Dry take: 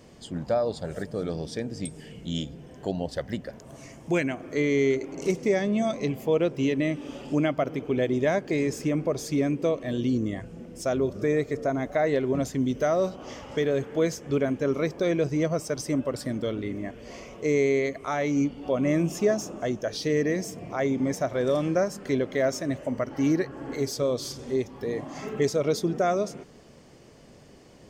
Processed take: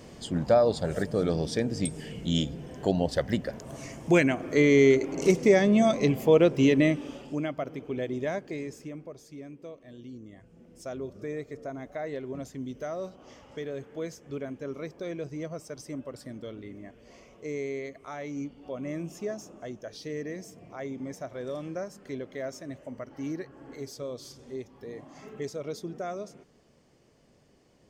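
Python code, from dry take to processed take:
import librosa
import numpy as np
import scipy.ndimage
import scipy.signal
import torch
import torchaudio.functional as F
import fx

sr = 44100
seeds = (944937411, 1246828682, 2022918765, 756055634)

y = fx.gain(x, sr, db=fx.line((6.85, 4.0), (7.32, -7.0), (8.35, -7.0), (9.25, -18.5), (10.28, -18.5), (10.72, -11.0)))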